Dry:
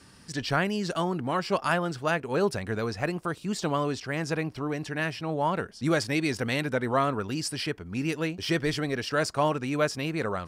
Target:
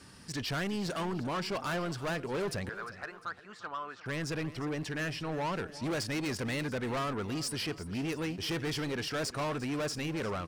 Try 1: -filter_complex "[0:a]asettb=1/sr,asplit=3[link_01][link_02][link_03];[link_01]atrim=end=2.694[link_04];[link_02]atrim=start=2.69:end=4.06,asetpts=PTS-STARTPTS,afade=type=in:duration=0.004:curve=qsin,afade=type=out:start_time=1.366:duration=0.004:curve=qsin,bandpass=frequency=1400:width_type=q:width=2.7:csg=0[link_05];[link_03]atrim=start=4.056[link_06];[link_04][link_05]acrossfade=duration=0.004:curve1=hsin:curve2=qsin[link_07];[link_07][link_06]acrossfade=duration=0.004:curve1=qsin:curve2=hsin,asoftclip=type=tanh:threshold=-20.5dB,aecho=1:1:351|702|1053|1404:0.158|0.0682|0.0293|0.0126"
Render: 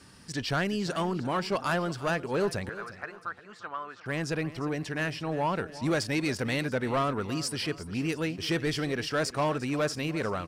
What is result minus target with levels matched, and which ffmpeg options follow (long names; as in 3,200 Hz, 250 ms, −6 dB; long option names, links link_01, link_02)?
soft clipping: distortion −9 dB
-filter_complex "[0:a]asettb=1/sr,asplit=3[link_01][link_02][link_03];[link_01]atrim=end=2.694[link_04];[link_02]atrim=start=2.69:end=4.06,asetpts=PTS-STARTPTS,afade=type=in:duration=0.004:curve=qsin,afade=type=out:start_time=1.366:duration=0.004:curve=qsin,bandpass=frequency=1400:width_type=q:width=2.7:csg=0[link_05];[link_03]atrim=start=4.056[link_06];[link_04][link_05]acrossfade=duration=0.004:curve1=hsin:curve2=qsin[link_07];[link_07][link_06]acrossfade=duration=0.004:curve1=qsin:curve2=hsin,asoftclip=type=tanh:threshold=-30.5dB,aecho=1:1:351|702|1053|1404:0.158|0.0682|0.0293|0.0126"